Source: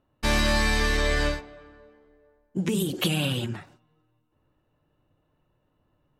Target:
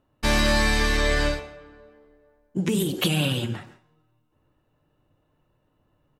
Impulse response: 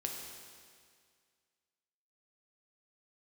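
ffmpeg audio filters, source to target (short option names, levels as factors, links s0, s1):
-filter_complex "[0:a]asplit=2[s0][s1];[s1]adelay=140,highpass=300,lowpass=3400,asoftclip=type=hard:threshold=0.1,volume=0.141[s2];[s0][s2]amix=inputs=2:normalize=0,asplit=2[s3][s4];[1:a]atrim=start_sample=2205,afade=t=out:st=0.25:d=0.01,atrim=end_sample=11466[s5];[s4][s5]afir=irnorm=-1:irlink=0,volume=0.316[s6];[s3][s6]amix=inputs=2:normalize=0"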